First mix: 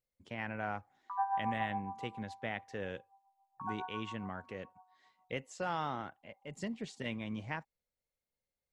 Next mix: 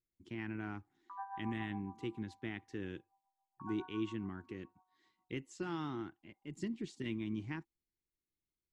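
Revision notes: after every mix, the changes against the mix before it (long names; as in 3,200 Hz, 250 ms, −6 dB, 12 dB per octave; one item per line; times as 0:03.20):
master: add drawn EQ curve 240 Hz 0 dB, 340 Hz +11 dB, 540 Hz −20 dB, 1,000 Hz −8 dB, 3,700 Hz −4 dB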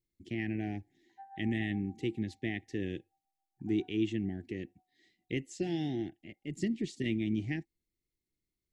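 speech +7.5 dB
master: add elliptic band-stop filter 750–1,800 Hz, stop band 50 dB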